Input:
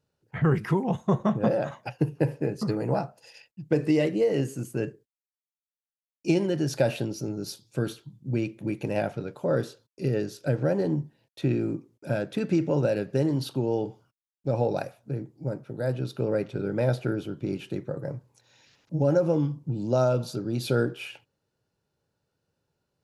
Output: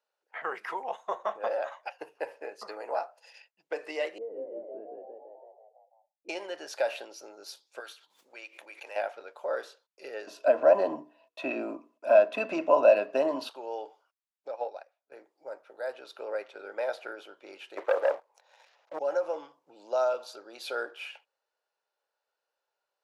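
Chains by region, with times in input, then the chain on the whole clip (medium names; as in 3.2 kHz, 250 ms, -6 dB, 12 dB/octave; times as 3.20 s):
4.18–6.29 s: resonant low-pass 280 Hz, resonance Q 1.7 + frequency-shifting echo 166 ms, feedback 53%, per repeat +63 Hz, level -4 dB
7.80–8.96 s: high-pass 1.3 kHz 6 dB/octave + swell ahead of each attack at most 63 dB/s
10.27–13.49 s: bass shelf 250 Hz +11.5 dB + hum notches 60/120/180/240/300/360/420/480 Hz + small resonant body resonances 240/640/1000/2600 Hz, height 18 dB, ringing for 35 ms
14.48–15.12 s: low-pass 7 kHz + upward expansion 2.5:1, over -35 dBFS
17.77–18.99 s: high-pass 130 Hz 24 dB/octave + peaking EQ 650 Hz +12 dB 1.9 oct + waveshaping leveller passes 2
whole clip: high-pass 600 Hz 24 dB/octave; treble shelf 5.4 kHz -11.5 dB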